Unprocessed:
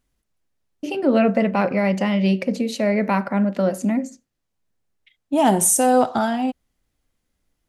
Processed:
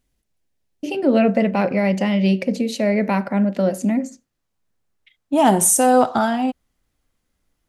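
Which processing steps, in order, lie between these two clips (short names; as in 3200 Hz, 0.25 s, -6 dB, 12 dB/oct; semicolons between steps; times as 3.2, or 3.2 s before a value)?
bell 1200 Hz -5.5 dB, from 4 s +2.5 dB; gain +1.5 dB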